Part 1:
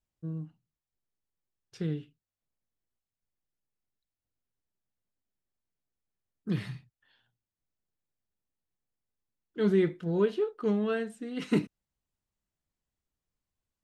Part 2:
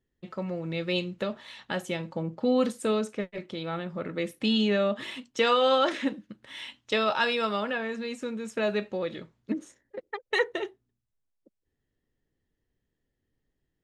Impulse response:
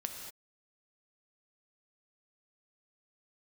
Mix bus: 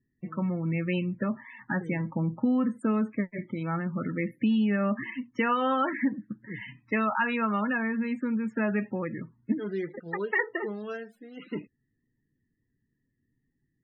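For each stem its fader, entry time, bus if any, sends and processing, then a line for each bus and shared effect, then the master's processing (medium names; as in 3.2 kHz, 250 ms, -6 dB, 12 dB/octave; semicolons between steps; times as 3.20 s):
-2.5 dB, 0.00 s, no send, bass shelf 330 Hz -10.5 dB; delay time shaken by noise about 3.8 kHz, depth 0.041 ms
-4.5 dB, 0.00 s, no send, graphic EQ 125/250/500/1000/2000/4000/8000 Hz +11/+11/-5/+7/+10/-10/-6 dB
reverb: none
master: loudest bins only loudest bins 32; compression, threshold -22 dBFS, peak gain reduction 6.5 dB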